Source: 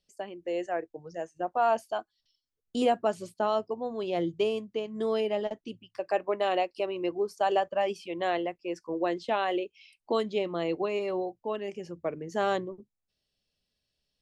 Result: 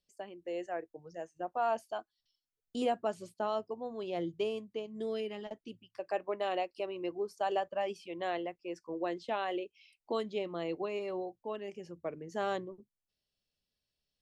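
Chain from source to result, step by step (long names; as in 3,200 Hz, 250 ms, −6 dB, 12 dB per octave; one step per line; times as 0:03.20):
0:04.81–0:05.47: parametric band 1,800 Hz → 510 Hz −14.5 dB 0.62 octaves
level −6.5 dB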